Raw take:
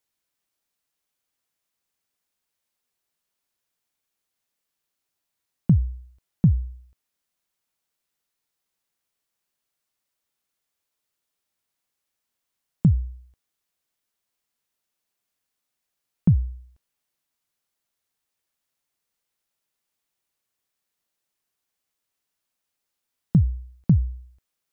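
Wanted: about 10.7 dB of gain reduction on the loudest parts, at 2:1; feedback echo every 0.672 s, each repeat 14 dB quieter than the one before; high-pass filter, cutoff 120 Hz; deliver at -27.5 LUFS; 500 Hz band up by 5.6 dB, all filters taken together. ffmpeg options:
-af "highpass=120,equalizer=f=500:t=o:g=7.5,acompressor=threshold=-33dB:ratio=2,aecho=1:1:672|1344:0.2|0.0399,volume=9.5dB"

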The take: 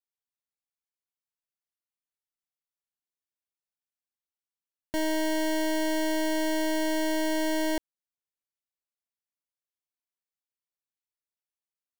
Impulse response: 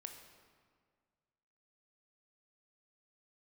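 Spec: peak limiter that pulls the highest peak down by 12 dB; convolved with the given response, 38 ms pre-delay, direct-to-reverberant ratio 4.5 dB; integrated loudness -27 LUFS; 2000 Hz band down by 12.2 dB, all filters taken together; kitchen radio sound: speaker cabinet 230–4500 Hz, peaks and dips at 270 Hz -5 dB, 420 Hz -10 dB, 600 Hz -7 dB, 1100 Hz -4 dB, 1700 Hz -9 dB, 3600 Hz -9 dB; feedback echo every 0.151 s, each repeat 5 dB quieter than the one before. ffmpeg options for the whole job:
-filter_complex "[0:a]equalizer=f=2k:t=o:g=-8,alimiter=level_in=14dB:limit=-24dB:level=0:latency=1,volume=-14dB,aecho=1:1:151|302|453|604|755|906|1057:0.562|0.315|0.176|0.0988|0.0553|0.031|0.0173,asplit=2[a][b];[1:a]atrim=start_sample=2205,adelay=38[c];[b][c]afir=irnorm=-1:irlink=0,volume=0dB[d];[a][d]amix=inputs=2:normalize=0,highpass=230,equalizer=f=270:t=q:w=4:g=-5,equalizer=f=420:t=q:w=4:g=-10,equalizer=f=600:t=q:w=4:g=-7,equalizer=f=1.1k:t=q:w=4:g=-4,equalizer=f=1.7k:t=q:w=4:g=-9,equalizer=f=3.6k:t=q:w=4:g=-9,lowpass=f=4.5k:w=0.5412,lowpass=f=4.5k:w=1.3066,volume=19.5dB"

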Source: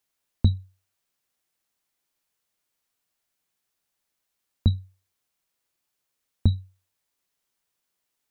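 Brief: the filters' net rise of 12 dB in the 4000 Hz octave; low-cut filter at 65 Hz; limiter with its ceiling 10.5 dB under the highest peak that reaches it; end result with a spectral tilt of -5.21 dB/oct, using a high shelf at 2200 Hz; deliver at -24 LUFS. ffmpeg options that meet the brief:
-af "highpass=65,highshelf=f=2.2k:g=4,equalizer=f=4k:t=o:g=9,volume=9dB,alimiter=limit=-8.5dB:level=0:latency=1"

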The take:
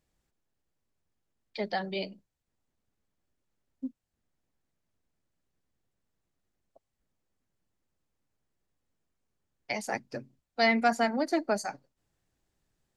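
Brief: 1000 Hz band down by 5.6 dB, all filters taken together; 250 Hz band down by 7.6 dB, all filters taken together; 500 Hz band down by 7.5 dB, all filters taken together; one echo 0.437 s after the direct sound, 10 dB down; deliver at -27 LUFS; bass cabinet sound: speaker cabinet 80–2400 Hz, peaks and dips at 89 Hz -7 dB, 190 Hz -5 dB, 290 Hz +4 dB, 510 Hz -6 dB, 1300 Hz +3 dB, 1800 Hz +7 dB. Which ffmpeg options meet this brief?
-af "highpass=f=80:w=0.5412,highpass=f=80:w=1.3066,equalizer=f=89:t=q:w=4:g=-7,equalizer=f=190:t=q:w=4:g=-5,equalizer=f=290:t=q:w=4:g=4,equalizer=f=510:t=q:w=4:g=-6,equalizer=f=1.3k:t=q:w=4:g=3,equalizer=f=1.8k:t=q:w=4:g=7,lowpass=f=2.4k:w=0.5412,lowpass=f=2.4k:w=1.3066,equalizer=f=250:t=o:g=-7.5,equalizer=f=500:t=o:g=-5,equalizer=f=1k:t=o:g=-5.5,aecho=1:1:437:0.316,volume=6dB"

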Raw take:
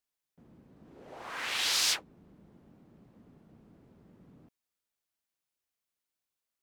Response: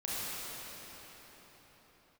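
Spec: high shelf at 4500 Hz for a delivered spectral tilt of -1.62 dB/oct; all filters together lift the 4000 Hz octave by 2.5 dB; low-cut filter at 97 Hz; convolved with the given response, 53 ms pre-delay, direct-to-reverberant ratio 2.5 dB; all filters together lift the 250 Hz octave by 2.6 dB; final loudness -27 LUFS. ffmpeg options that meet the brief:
-filter_complex "[0:a]highpass=97,equalizer=f=250:t=o:g=3.5,equalizer=f=4k:t=o:g=6.5,highshelf=f=4.5k:g=-6.5,asplit=2[a][b];[1:a]atrim=start_sample=2205,adelay=53[c];[b][c]afir=irnorm=-1:irlink=0,volume=-8.5dB[d];[a][d]amix=inputs=2:normalize=0,volume=2dB"

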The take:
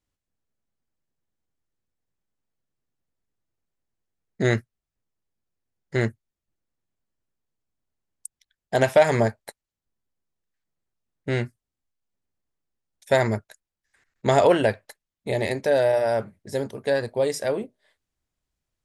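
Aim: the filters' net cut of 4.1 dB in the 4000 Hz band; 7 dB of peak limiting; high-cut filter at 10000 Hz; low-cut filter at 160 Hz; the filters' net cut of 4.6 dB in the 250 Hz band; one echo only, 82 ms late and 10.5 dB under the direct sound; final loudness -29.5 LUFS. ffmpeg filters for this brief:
-af "highpass=160,lowpass=10k,equalizer=f=250:t=o:g=-5.5,equalizer=f=4k:t=o:g=-5,alimiter=limit=-13dB:level=0:latency=1,aecho=1:1:82:0.299,volume=-3dB"

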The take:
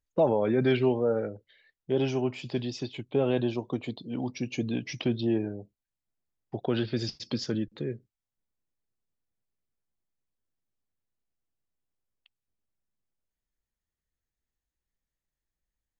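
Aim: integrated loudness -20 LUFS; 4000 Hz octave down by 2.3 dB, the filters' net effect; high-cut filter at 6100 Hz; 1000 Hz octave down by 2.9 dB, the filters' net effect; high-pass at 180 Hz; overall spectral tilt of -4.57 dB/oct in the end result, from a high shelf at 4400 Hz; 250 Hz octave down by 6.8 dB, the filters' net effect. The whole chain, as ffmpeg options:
-af "highpass=180,lowpass=6.1k,equalizer=f=250:t=o:g=-7.5,equalizer=f=1k:t=o:g=-3.5,equalizer=f=4k:t=o:g=-6,highshelf=f=4.4k:g=7,volume=14dB"

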